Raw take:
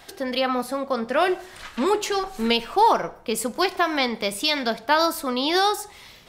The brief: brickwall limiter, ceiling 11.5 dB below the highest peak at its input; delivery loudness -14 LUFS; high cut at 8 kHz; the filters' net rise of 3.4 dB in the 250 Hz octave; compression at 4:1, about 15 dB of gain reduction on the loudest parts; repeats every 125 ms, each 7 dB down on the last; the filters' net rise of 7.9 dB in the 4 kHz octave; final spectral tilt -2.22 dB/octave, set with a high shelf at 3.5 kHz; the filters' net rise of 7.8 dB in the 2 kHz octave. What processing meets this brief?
low-pass 8 kHz; peaking EQ 250 Hz +4 dB; peaking EQ 2 kHz +7.5 dB; treble shelf 3.5 kHz +5.5 dB; peaking EQ 4 kHz +4 dB; compression 4:1, threshold -29 dBFS; peak limiter -24 dBFS; feedback delay 125 ms, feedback 45%, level -7 dB; trim +19 dB

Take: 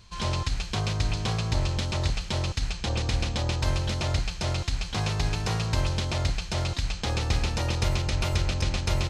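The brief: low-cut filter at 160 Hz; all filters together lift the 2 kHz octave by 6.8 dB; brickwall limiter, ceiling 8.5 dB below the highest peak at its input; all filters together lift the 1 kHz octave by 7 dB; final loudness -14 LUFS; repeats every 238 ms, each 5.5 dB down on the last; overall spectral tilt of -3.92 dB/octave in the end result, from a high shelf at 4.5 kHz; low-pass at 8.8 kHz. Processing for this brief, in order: high-pass 160 Hz; low-pass 8.8 kHz; peaking EQ 1 kHz +7 dB; peaking EQ 2 kHz +7.5 dB; treble shelf 4.5 kHz -3 dB; peak limiter -19 dBFS; feedback delay 238 ms, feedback 53%, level -5.5 dB; trim +15 dB

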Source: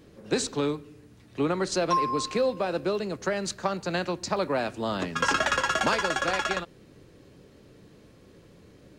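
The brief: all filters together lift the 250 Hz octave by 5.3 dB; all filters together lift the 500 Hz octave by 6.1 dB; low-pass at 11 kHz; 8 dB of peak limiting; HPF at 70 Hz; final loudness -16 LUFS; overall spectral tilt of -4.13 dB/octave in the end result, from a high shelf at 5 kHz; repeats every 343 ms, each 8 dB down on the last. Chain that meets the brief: high-pass 70 Hz; low-pass 11 kHz; peaking EQ 250 Hz +5 dB; peaking EQ 500 Hz +6 dB; treble shelf 5 kHz +3.5 dB; peak limiter -16.5 dBFS; feedback delay 343 ms, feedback 40%, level -8 dB; trim +10 dB

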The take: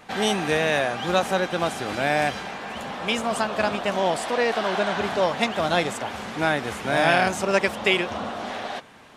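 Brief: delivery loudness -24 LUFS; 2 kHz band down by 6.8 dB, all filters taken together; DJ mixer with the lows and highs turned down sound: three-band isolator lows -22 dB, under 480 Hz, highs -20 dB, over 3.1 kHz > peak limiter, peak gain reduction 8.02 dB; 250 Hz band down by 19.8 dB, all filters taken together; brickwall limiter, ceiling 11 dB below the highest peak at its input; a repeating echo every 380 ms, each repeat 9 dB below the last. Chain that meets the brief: peaking EQ 250 Hz -8 dB; peaking EQ 2 kHz -7.5 dB; peak limiter -19.5 dBFS; three-band isolator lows -22 dB, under 480 Hz, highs -20 dB, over 3.1 kHz; feedback delay 380 ms, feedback 35%, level -9 dB; trim +12 dB; peak limiter -15 dBFS

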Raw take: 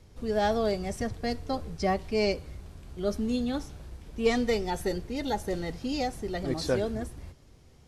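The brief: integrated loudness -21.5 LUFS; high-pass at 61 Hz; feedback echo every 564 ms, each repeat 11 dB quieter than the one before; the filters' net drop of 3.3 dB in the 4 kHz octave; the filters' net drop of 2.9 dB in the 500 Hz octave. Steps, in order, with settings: high-pass 61 Hz; peaking EQ 500 Hz -3.5 dB; peaking EQ 4 kHz -4 dB; feedback delay 564 ms, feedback 28%, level -11 dB; trim +11 dB

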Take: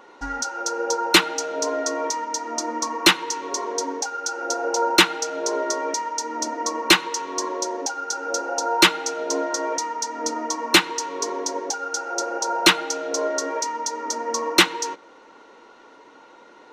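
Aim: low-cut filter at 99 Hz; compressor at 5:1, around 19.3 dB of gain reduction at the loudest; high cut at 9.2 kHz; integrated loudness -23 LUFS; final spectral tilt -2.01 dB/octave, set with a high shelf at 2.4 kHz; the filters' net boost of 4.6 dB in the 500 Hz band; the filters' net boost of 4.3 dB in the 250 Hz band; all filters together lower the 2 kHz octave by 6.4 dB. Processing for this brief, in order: high-pass 99 Hz; low-pass 9.2 kHz; peaking EQ 250 Hz +4 dB; peaking EQ 500 Hz +5 dB; peaking EQ 2 kHz -7 dB; treble shelf 2.4 kHz -4 dB; compression 5:1, threshold -33 dBFS; trim +12 dB

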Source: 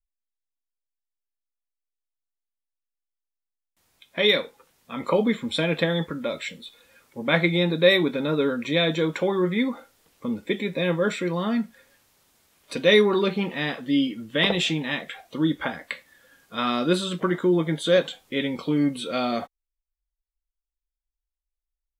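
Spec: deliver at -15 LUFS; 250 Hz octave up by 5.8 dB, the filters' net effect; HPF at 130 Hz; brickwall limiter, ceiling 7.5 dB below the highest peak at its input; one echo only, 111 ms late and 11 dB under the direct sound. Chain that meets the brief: high-pass 130 Hz; peaking EQ 250 Hz +8 dB; peak limiter -11 dBFS; delay 111 ms -11 dB; trim +7 dB

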